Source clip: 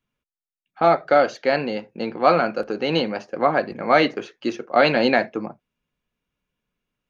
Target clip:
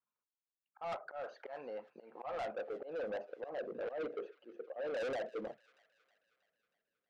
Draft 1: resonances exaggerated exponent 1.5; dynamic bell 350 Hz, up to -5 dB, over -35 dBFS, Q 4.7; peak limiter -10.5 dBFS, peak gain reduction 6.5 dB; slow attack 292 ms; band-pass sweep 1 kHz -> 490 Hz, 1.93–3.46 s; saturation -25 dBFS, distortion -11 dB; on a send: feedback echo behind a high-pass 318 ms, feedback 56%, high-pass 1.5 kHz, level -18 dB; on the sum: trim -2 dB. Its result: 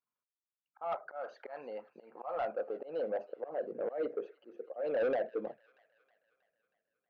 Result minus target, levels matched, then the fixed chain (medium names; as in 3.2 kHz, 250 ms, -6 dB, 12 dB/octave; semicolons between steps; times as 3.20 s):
saturation: distortion -6 dB
resonances exaggerated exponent 1.5; dynamic bell 350 Hz, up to -5 dB, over -35 dBFS, Q 4.7; peak limiter -10.5 dBFS, peak gain reduction 6.5 dB; slow attack 292 ms; band-pass sweep 1 kHz -> 490 Hz, 1.93–3.46 s; saturation -34 dBFS, distortion -5 dB; on a send: feedback echo behind a high-pass 318 ms, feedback 56%, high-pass 1.5 kHz, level -18 dB; on the sum: trim -2 dB